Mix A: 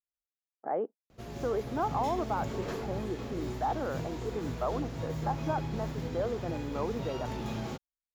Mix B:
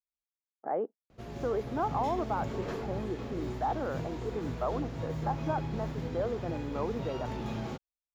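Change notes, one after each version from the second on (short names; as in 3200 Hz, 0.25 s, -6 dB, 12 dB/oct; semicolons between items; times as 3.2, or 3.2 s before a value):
master: add high shelf 5500 Hz -8.5 dB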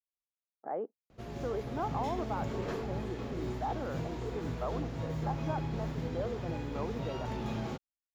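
speech -4.5 dB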